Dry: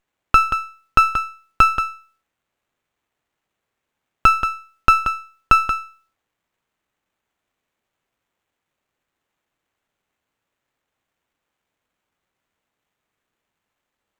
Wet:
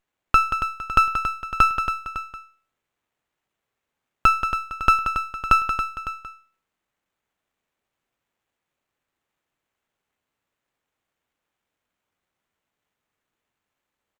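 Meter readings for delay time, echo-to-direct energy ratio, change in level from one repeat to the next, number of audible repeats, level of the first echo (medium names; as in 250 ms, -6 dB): 278 ms, -8.0 dB, -5.0 dB, 2, -9.0 dB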